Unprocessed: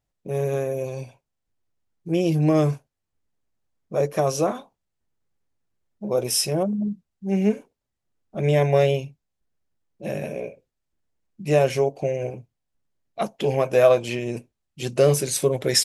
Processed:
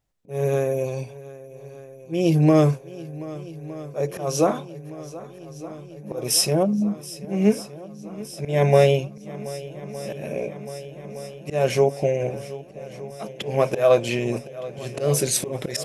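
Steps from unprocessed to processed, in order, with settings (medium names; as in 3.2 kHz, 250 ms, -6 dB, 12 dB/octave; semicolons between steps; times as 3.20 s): slow attack 204 ms; shuffle delay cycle 1214 ms, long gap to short 1.5:1, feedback 73%, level -18 dB; trim +3 dB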